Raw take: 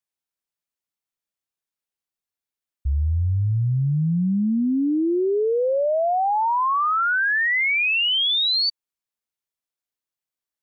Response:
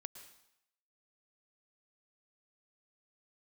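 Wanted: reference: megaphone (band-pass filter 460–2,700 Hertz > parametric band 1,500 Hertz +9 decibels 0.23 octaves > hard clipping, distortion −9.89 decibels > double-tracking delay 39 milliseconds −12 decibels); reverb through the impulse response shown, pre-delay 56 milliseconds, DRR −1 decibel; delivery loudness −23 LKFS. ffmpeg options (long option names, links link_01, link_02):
-filter_complex "[0:a]asplit=2[link_01][link_02];[1:a]atrim=start_sample=2205,adelay=56[link_03];[link_02][link_03]afir=irnorm=-1:irlink=0,volume=5.5dB[link_04];[link_01][link_04]amix=inputs=2:normalize=0,highpass=460,lowpass=2700,equalizer=frequency=1500:width_type=o:width=0.23:gain=9,asoftclip=type=hard:threshold=-14.5dB,asplit=2[link_05][link_06];[link_06]adelay=39,volume=-12dB[link_07];[link_05][link_07]amix=inputs=2:normalize=0,volume=-4.5dB"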